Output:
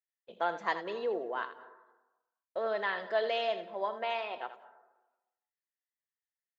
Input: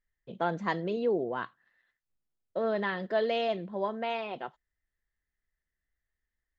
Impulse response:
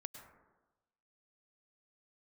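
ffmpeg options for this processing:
-filter_complex "[0:a]highpass=540,agate=range=-13dB:threshold=-59dB:ratio=16:detection=peak,asplit=2[link_01][link_02];[1:a]atrim=start_sample=2205,adelay=81[link_03];[link_02][link_03]afir=irnorm=-1:irlink=0,volume=-6.5dB[link_04];[link_01][link_04]amix=inputs=2:normalize=0"

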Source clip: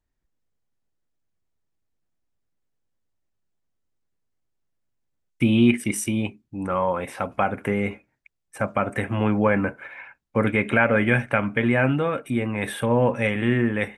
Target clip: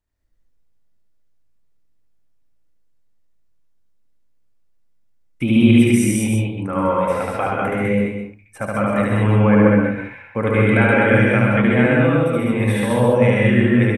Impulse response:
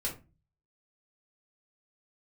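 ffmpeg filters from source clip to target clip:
-filter_complex "[0:a]aecho=1:1:72.89|198.3:0.891|0.562,asplit=2[link_01][link_02];[1:a]atrim=start_sample=2205,adelay=127[link_03];[link_02][link_03]afir=irnorm=-1:irlink=0,volume=-2.5dB[link_04];[link_01][link_04]amix=inputs=2:normalize=0,volume=-1.5dB"

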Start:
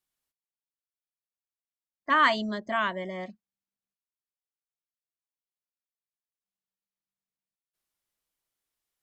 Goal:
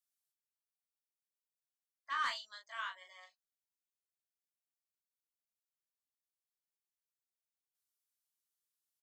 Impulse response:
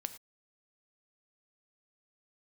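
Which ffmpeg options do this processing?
-af "highpass=frequency=1300:width=0.5412,highpass=frequency=1300:width=1.3066,equalizer=frequency=2100:width_type=o:width=1.5:gain=-11.5,asoftclip=type=tanh:threshold=-25.5dB,aecho=1:1:18|38:0.562|0.473,volume=-4dB"

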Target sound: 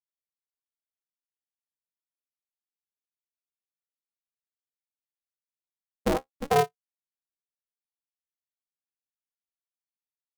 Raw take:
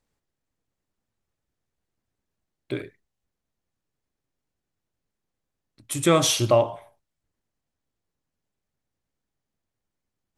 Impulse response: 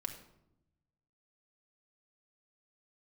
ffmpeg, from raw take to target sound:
-af "afftfilt=real='re*gte(hypot(re,im),0.708)':imag='im*gte(hypot(re,im),0.708)':win_size=1024:overlap=0.75,alimiter=limit=-15dB:level=0:latency=1:release=39,highpass=frequency=150:width=0.5412,highpass=frequency=150:width=1.3066,equalizer=frequency=230:width_type=q:width=4:gain=8,equalizer=frequency=1200:width_type=q:width=4:gain=-9,equalizer=frequency=1900:width_type=q:width=4:gain=-7,lowpass=frequency=3000:width=0.5412,lowpass=frequency=3000:width=1.3066,crystalizer=i=2:c=0,flanger=delay=6.5:depth=7.1:regen=38:speed=0.24:shape=triangular,aeval=exprs='val(0)*sgn(sin(2*PI*140*n/s))':channel_layout=same,volume=4dB"

